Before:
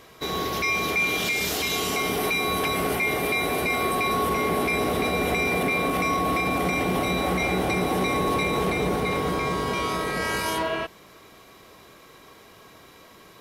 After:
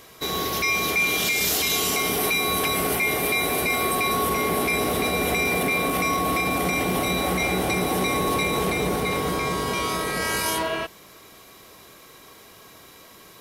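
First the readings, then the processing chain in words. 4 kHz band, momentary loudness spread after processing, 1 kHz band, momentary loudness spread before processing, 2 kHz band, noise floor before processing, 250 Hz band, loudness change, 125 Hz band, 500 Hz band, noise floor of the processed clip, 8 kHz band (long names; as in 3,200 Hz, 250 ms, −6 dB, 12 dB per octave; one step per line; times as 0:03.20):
+3.5 dB, 5 LU, +0.5 dB, 3 LU, +1.5 dB, −50 dBFS, 0.0 dB, +1.5 dB, 0.0 dB, 0.0 dB, −48 dBFS, +7.0 dB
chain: high-shelf EQ 5,200 Hz +9.5 dB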